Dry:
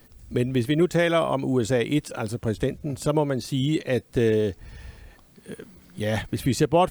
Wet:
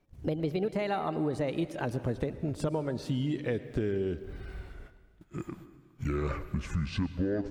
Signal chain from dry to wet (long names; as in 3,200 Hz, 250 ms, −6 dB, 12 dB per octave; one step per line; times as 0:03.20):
gliding playback speed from 129% → 55%
low-pass filter 2,100 Hz 6 dB per octave
noise gate −47 dBFS, range −16 dB
downward compressor, threshold −28 dBFS, peak gain reduction 13.5 dB
convolution reverb RT60 1.7 s, pre-delay 103 ms, DRR 13.5 dB